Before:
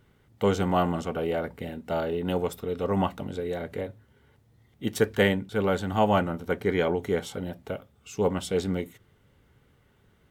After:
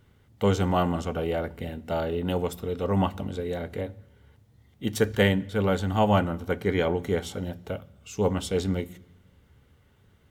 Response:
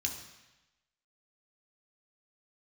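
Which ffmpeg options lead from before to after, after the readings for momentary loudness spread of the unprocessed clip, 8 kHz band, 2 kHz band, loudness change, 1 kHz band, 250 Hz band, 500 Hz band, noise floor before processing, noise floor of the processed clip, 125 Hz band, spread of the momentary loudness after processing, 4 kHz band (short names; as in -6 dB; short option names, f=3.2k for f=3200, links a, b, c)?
13 LU, +1.5 dB, -0.5 dB, +0.5 dB, -0.5 dB, +1.0 dB, -0.5 dB, -64 dBFS, -61 dBFS, +3.5 dB, 12 LU, +1.5 dB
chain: -filter_complex "[0:a]asplit=2[a][b];[b]equalizer=f=69:w=0.42:g=11[c];[1:a]atrim=start_sample=2205[d];[c][d]afir=irnorm=-1:irlink=0,volume=-17.5dB[e];[a][e]amix=inputs=2:normalize=0"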